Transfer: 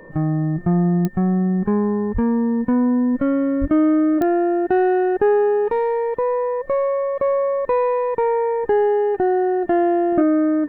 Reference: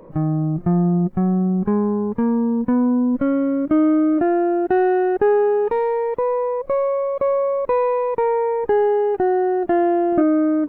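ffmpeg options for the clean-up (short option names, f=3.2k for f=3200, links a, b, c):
-filter_complex "[0:a]adeclick=t=4,bandreject=f=1.8k:w=30,asplit=3[a][b][c];[a]afade=t=out:st=2.13:d=0.02[d];[b]highpass=f=140:w=0.5412,highpass=f=140:w=1.3066,afade=t=in:st=2.13:d=0.02,afade=t=out:st=2.25:d=0.02[e];[c]afade=t=in:st=2.25:d=0.02[f];[d][e][f]amix=inputs=3:normalize=0,asplit=3[g][h][i];[g]afade=t=out:st=3.6:d=0.02[j];[h]highpass=f=140:w=0.5412,highpass=f=140:w=1.3066,afade=t=in:st=3.6:d=0.02,afade=t=out:st=3.72:d=0.02[k];[i]afade=t=in:st=3.72:d=0.02[l];[j][k][l]amix=inputs=3:normalize=0"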